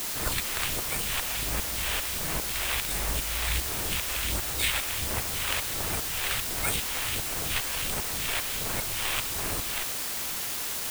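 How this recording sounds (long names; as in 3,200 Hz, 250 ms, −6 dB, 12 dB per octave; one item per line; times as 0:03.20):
tremolo saw up 2.5 Hz, depth 85%
aliases and images of a low sample rate 5,900 Hz, jitter 0%
phaser sweep stages 2, 1.4 Hz, lowest notch 160–4,600 Hz
a quantiser's noise floor 6 bits, dither triangular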